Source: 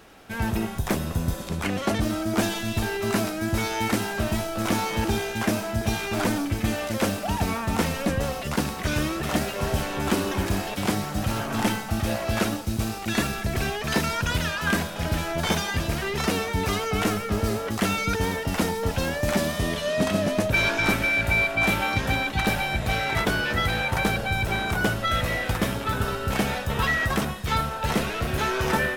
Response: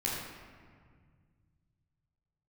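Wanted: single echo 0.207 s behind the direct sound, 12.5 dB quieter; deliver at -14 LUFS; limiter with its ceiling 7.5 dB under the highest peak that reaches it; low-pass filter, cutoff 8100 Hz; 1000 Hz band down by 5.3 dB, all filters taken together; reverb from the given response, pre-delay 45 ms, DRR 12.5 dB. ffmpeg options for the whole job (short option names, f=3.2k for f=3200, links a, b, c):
-filter_complex "[0:a]lowpass=8.1k,equalizer=f=1k:t=o:g=-7.5,alimiter=limit=-17dB:level=0:latency=1,aecho=1:1:207:0.237,asplit=2[a][b];[1:a]atrim=start_sample=2205,adelay=45[c];[b][c]afir=irnorm=-1:irlink=0,volume=-18.5dB[d];[a][d]amix=inputs=2:normalize=0,volume=13.5dB"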